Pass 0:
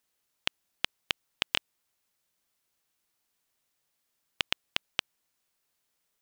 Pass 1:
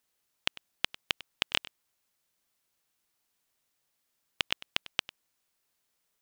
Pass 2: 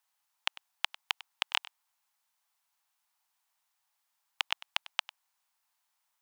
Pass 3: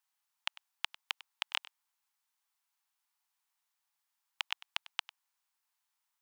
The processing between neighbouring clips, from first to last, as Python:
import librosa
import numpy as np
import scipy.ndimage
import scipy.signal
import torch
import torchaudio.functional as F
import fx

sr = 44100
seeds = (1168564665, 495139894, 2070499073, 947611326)

y1 = x + 10.0 ** (-18.5 / 20.0) * np.pad(x, (int(99 * sr / 1000.0), 0))[:len(x)]
y2 = fx.low_shelf_res(y1, sr, hz=590.0, db=-13.0, q=3.0)
y2 = F.gain(torch.from_numpy(y2), -2.0).numpy()
y3 = scipy.signal.sosfilt(scipy.signal.butter(2, 790.0, 'highpass', fs=sr, output='sos'), y2)
y3 = F.gain(torch.from_numpy(y3), -4.5).numpy()